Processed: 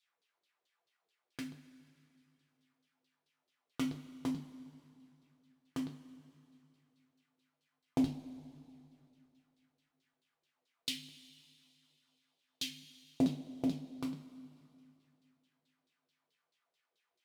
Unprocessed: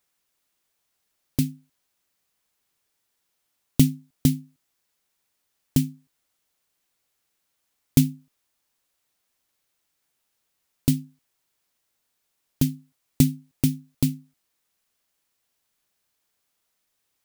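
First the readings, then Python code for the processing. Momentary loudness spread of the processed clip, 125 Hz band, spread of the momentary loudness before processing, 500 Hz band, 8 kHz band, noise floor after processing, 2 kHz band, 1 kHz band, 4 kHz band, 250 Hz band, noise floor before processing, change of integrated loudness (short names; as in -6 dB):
23 LU, -22.5 dB, 9 LU, -6.5 dB, -17.5 dB, under -85 dBFS, -6.5 dB, n/a, -6.0 dB, -12.0 dB, -76 dBFS, -14.0 dB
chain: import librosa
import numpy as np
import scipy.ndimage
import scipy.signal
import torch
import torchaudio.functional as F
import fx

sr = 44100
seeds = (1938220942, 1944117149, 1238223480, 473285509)

y = fx.filter_lfo_bandpass(x, sr, shape='saw_down', hz=4.6, low_hz=350.0, high_hz=4200.0, q=3.2)
y = fx.rev_double_slope(y, sr, seeds[0], early_s=0.3, late_s=2.7, knee_db=-18, drr_db=1.0)
y = y * 10.0 ** (3.0 / 20.0)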